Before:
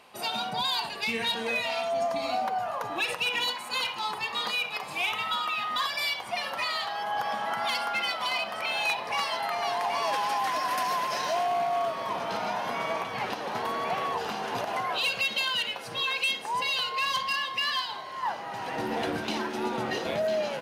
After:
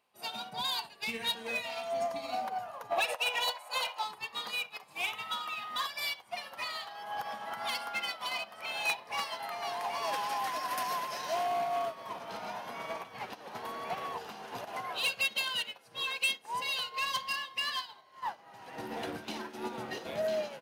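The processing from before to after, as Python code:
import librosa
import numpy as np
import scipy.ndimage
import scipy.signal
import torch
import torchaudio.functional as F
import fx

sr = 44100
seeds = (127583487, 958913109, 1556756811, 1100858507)

y = fx.highpass_res(x, sr, hz=630.0, q=4.2, at=(2.9, 4.03), fade=0.02)
y = 10.0 ** (-20.5 / 20.0) * np.tanh(y / 10.0 ** (-20.5 / 20.0))
y = fx.high_shelf(y, sr, hz=11000.0, db=10.0)
y = fx.upward_expand(y, sr, threshold_db=-40.0, expansion=2.5)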